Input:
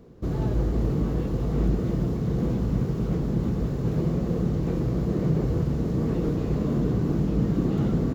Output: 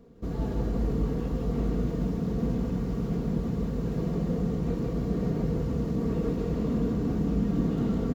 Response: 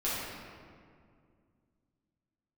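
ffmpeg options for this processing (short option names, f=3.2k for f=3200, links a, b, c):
-af "aecho=1:1:4.3:0.44,aecho=1:1:158:0.668,volume=-5dB"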